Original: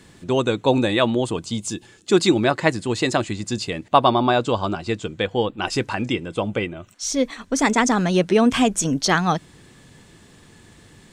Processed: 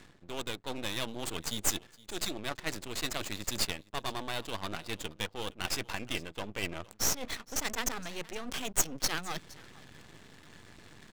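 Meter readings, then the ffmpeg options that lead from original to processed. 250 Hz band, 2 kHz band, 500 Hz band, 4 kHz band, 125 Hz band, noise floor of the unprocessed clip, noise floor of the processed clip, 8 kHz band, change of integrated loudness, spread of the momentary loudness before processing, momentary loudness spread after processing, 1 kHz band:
−21.5 dB, −12.5 dB, −20.5 dB, −8.5 dB, −18.0 dB, −50 dBFS, −59 dBFS, −5.0 dB, −14.0 dB, 10 LU, 22 LU, −18.5 dB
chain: -af "areverse,acompressor=threshold=-33dB:ratio=6,areverse,crystalizer=i=8.5:c=0,adynamicsmooth=sensitivity=7.5:basefreq=1200,aecho=1:1:465:0.0794,aeval=exprs='max(val(0),0)':channel_layout=same,volume=-2.5dB"

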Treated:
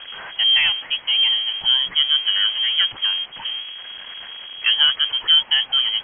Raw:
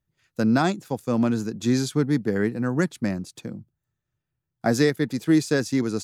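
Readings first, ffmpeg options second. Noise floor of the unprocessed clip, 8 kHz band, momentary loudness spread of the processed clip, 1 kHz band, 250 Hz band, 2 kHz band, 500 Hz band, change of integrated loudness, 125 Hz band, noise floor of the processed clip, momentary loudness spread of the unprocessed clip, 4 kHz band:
−83 dBFS, below −40 dB, 18 LU, −4.5 dB, below −30 dB, +7.0 dB, below −20 dB, +7.0 dB, below −25 dB, −40 dBFS, 12 LU, +25.5 dB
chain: -af "aeval=exprs='val(0)+0.5*0.0376*sgn(val(0))':channel_layout=same,highpass=100,lowpass=frequency=2900:width_type=q:width=0.5098,lowpass=frequency=2900:width_type=q:width=0.6013,lowpass=frequency=2900:width_type=q:width=0.9,lowpass=frequency=2900:width_type=q:width=2.563,afreqshift=-3400,volume=2.5dB"

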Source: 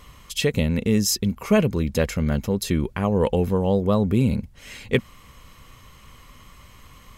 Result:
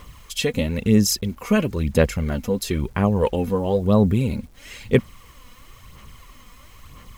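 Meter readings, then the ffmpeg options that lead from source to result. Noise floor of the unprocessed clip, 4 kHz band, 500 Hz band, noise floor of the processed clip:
−49 dBFS, +0.5 dB, +1.0 dB, −47 dBFS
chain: -af "aphaser=in_gain=1:out_gain=1:delay=4.1:decay=0.5:speed=1:type=sinusoidal,acrusher=bits=8:mix=0:aa=0.000001,volume=-1dB"

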